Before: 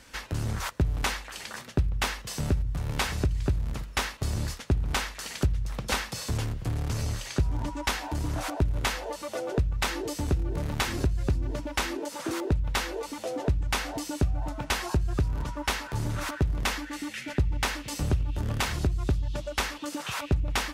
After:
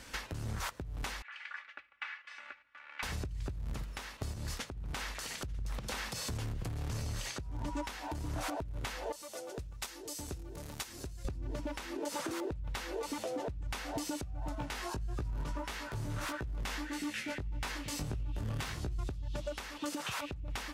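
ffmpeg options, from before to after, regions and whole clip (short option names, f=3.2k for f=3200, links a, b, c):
-filter_complex "[0:a]asettb=1/sr,asplit=3[a][b][c];[a]atrim=end=1.224[d];[b]atrim=start=1.22:end=3.03,asetpts=PTS-STARTPTS,afade=t=in:d=0.004:c=qsin,afade=t=out:st=1.806:d=0.004:c=qsin,asuperpass=centerf=1800:order=4:qfactor=1.7,equalizer=f=1.7k:t=o:w=1.1:g=-5.5,aecho=1:1:3.5:0.76,atrim=end_sample=79821[e];[c]atrim=start=3.026[f];[d][e]acrossfade=d=0.004:c1=hsin:c2=qsin[g];[g][f]acrossfade=d=0.004:c1=qsin:c2=hsin,asettb=1/sr,asplit=3[h][i][j];[h]atrim=end=4.324[k];[i]atrim=start=4.32:end=7.24,asetpts=PTS-STARTPTS,afade=t=in:d=0.004:c=qsin,afade=t=out:st=2.916:d=0.004:c=qsin,acompressor=threshold=-33dB:ratio=4:attack=3.2:release=140:knee=1:detection=peak,aecho=1:1:889:0.0944,atrim=end_sample=128772[l];[j]atrim=start=7.236[m];[k][l]acrossfade=d=0.004:c1=hsin:c2=qsin[n];[n][m]acrossfade=d=0.004:c1=qsin:c2=hsin,asettb=1/sr,asplit=3[o][p][q];[o]atrim=end=9.124[r];[p]atrim=start=9.12:end=11.25,asetpts=PTS-STARTPTS,afade=t=in:d=0.004:c=qsin,afade=t=out:st=2.126:d=0.004:c=qsin,bass=f=250:g=-5,treble=f=4k:g=11,agate=range=-13dB:threshold=-22dB:ratio=16:release=100:detection=peak[s];[q]atrim=start=11.246[t];[r][s]acrossfade=d=0.004:c1=hsin:c2=qsin[u];[u][t]acrossfade=d=0.004:c1=qsin:c2=hsin,asettb=1/sr,asplit=3[v][w][x];[v]atrim=end=14.554[y];[w]atrim=start=14.55:end=18.99,asetpts=PTS-STARTPTS,afade=t=in:d=0.004:c=qsin,afade=t=out:st=4.436:d=0.004:c=qsin,acompressor=threshold=-32dB:ratio=2:attack=3.2:release=140:knee=1:detection=peak,flanger=delay=16.5:depth=3.9:speed=1.6[z];[x]atrim=start=18.986[aa];[y][z]acrossfade=d=0.004:c1=hsin:c2=qsin[ab];[ab][aa]acrossfade=d=0.004:c1=qsin:c2=hsin,acompressor=threshold=-33dB:ratio=6,alimiter=level_in=4.5dB:limit=-24dB:level=0:latency=1:release=348,volume=-4.5dB,volume=1.5dB"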